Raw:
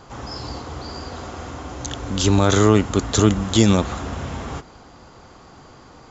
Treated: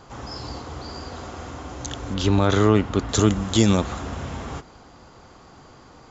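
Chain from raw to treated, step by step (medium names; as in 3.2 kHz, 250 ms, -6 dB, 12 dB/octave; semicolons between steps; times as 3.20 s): 2.14–3.09 s: low-pass 4.1 kHz 12 dB/octave; trim -2.5 dB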